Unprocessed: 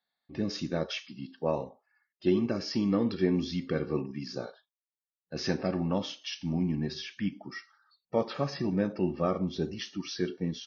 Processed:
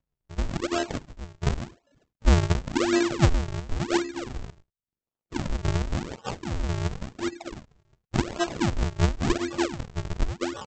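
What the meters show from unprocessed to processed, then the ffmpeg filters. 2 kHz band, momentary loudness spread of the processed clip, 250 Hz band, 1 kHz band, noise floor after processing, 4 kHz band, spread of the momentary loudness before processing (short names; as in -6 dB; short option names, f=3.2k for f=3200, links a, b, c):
+8.0 dB, 14 LU, +1.0 dB, +7.0 dB, under -85 dBFS, +2.5 dB, 11 LU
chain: -af "afftfilt=real='hypot(re,im)*cos(PI*b)':imag='0':win_size=512:overlap=0.75,highpass=f=45:p=1,acontrast=41,aresample=16000,acrusher=samples=36:mix=1:aa=0.000001:lfo=1:lforange=57.6:lforate=0.92,aresample=44100,volume=4dB"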